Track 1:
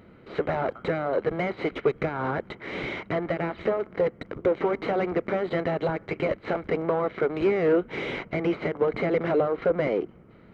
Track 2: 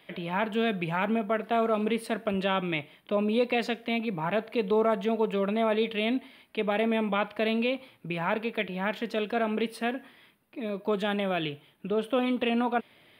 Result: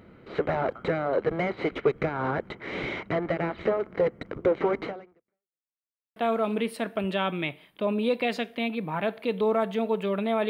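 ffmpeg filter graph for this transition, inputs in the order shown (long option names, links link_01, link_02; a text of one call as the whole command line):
ffmpeg -i cue0.wav -i cue1.wav -filter_complex "[0:a]apad=whole_dur=10.49,atrim=end=10.49,asplit=2[link_01][link_02];[link_01]atrim=end=5.71,asetpts=PTS-STARTPTS,afade=type=out:start_time=4.83:duration=0.88:curve=exp[link_03];[link_02]atrim=start=5.71:end=6.16,asetpts=PTS-STARTPTS,volume=0[link_04];[1:a]atrim=start=1.46:end=5.79,asetpts=PTS-STARTPTS,afade=type=in:duration=0.004:curve=hsin[link_05];[link_03][link_04][link_05]concat=n=3:v=0:a=1" out.wav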